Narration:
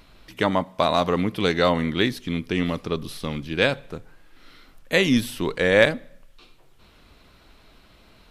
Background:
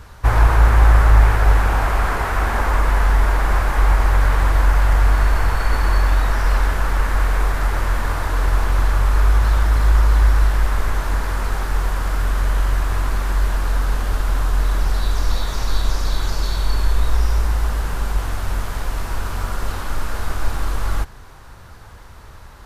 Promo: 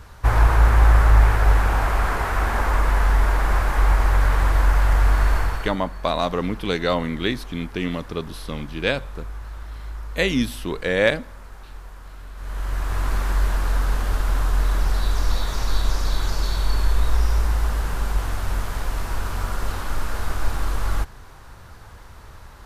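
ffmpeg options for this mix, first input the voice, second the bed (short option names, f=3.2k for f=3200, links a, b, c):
-filter_complex "[0:a]adelay=5250,volume=-2dB[a];[1:a]volume=15dB,afade=t=out:st=5.35:d=0.42:silence=0.141254,afade=t=in:st=12.35:d=0.78:silence=0.133352[b];[a][b]amix=inputs=2:normalize=0"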